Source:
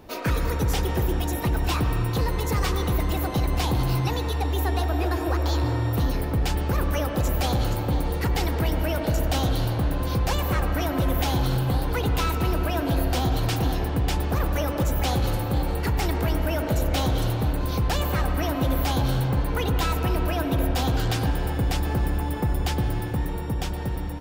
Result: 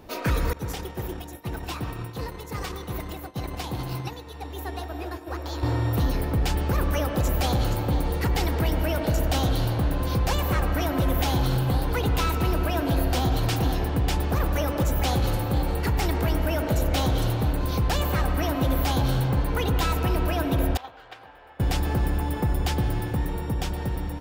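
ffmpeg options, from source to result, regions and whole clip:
-filter_complex "[0:a]asettb=1/sr,asplit=3[s0][s1][s2];[s0]atrim=end=0.534[s3];[s1]atrim=start=0.53:end=5.63,asetpts=PTS-STARTPTS,afade=t=in:d=0.004:c=qsin,afade=t=out:st=5.096:d=0.004:c=qsin,agate=range=0.0224:threshold=0.126:ratio=3:release=100:detection=peak,highpass=f=100:p=1[s4];[s2]atrim=start=5.626[s5];[s3][s4]acrossfade=d=0.004:c1=hsin:c2=qsin[s6];[s6][s5]acrossfade=d=0.004:c1=qsin:c2=hsin,asettb=1/sr,asplit=3[s7][s8][s9];[s7]atrim=end=20.774[s10];[s8]atrim=start=20.77:end=21.6,asetpts=PTS-STARTPTS,afade=t=in:d=0.004:c=qsin,afade=t=out:st=0.826:d=0.004:c=qsin,acrossover=split=490 3100:gain=0.0794 1 0.126[s11][s12][s13];[s11][s12][s13]amix=inputs=3:normalize=0,bandreject=f=60:t=h:w=6,bandreject=f=120:t=h:w=6,bandreject=f=180:t=h:w=6,bandreject=f=240:t=h:w=6,bandreject=f=300:t=h:w=6,bandreject=f=360:t=h:w=6,bandreject=f=420:t=h:w=6,bandreject=f=480:t=h:w=6,agate=range=0.224:threshold=0.0316:ratio=16:release=100:detection=peak[s14];[s9]atrim=start=21.596[s15];[s10][s14]acrossfade=d=0.004:c1=hsin:c2=qsin[s16];[s16][s15]acrossfade=d=0.004:c1=qsin:c2=hsin"

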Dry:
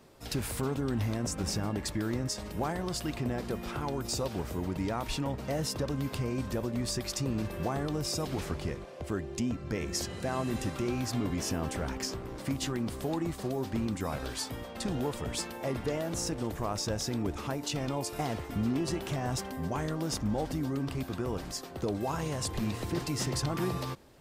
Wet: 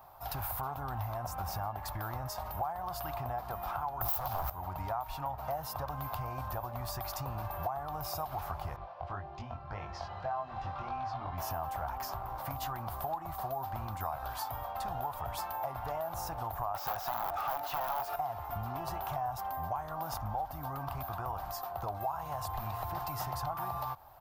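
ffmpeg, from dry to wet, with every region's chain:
-filter_complex "[0:a]asettb=1/sr,asplit=3[s0][s1][s2];[s0]atrim=end=4.014[s3];[s1]atrim=start=4.01:end=4.5,asetpts=PTS-STARTPTS,afade=t=in:d=0.004:c=qsin,afade=t=out:st=0.486:d=0.004:c=qsin,acrossover=split=220|3000[s4][s5][s6];[s5]acompressor=threshold=0.00398:ratio=2:attack=3.2:release=140:knee=2.83:detection=peak[s7];[s4][s7][s6]amix=inputs=3:normalize=0,aeval=exprs='0.0944*sin(PI/2*6.31*val(0)/0.0944)':c=same[s8];[s2]atrim=start=4.496[s9];[s3][s8]acrossfade=d=0.004:c1=hsin:c2=qsin[s10];[s10][s9]acrossfade=d=0.004:c1=qsin:c2=hsin,asettb=1/sr,asplit=3[s11][s12][s13];[s11]atrim=end=8.764[s14];[s12]atrim=start=8.76:end=11.38,asetpts=PTS-STARTPTS,afade=t=in:d=0.004:c=qsin,afade=t=out:st=2.616:d=0.004:c=qsin,lowpass=f=4800:w=0.5412,lowpass=f=4800:w=1.3066,flanger=delay=20:depth=2.6:speed=1.8[s15];[s13]atrim=start=11.376[s16];[s14][s15]acrossfade=d=0.004:c1=hsin:c2=qsin[s17];[s17][s16]acrossfade=d=0.004:c1=qsin:c2=hsin,asettb=1/sr,asplit=3[s18][s19][s20];[s18]atrim=end=16.744[s21];[s19]atrim=start=16.74:end=18.16,asetpts=PTS-STARTPTS,afade=t=in:d=0.004:c=qsin,afade=t=out:st=1.416:d=0.004:c=qsin,asuperstop=centerf=1000:order=4:qfactor=3.4,asplit=2[s22][s23];[s23]highpass=f=720:p=1,volume=20,asoftclip=type=tanh:threshold=0.0891[s24];[s22][s24]amix=inputs=2:normalize=0,lowpass=f=3200:p=1,volume=0.501,aeval=exprs='(mod(15.8*val(0)+1,2)-1)/15.8':c=same[s25];[s20]atrim=start=18.156[s26];[s21][s25]acrossfade=d=0.004:c1=hsin:c2=qsin[s27];[s27][s26]acrossfade=d=0.004:c1=qsin:c2=hsin,firequalizer=gain_entry='entry(100,0);entry(220,-17);entry(460,-13);entry(730,14);entry(1300,6);entry(1900,-6);entry(4200,-7);entry(8200,-12);entry(14000,14)':delay=0.05:min_phase=1,acompressor=threshold=0.02:ratio=4"

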